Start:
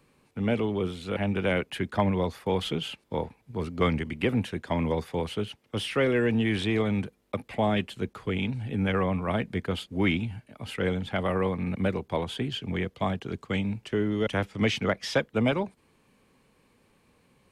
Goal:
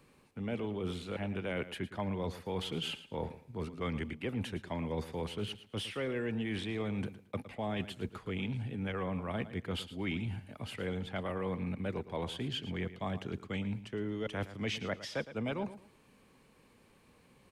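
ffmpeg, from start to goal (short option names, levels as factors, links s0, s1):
-af "areverse,acompressor=threshold=0.0178:ratio=4,areverse,aecho=1:1:112|224|336:0.2|0.0459|0.0106"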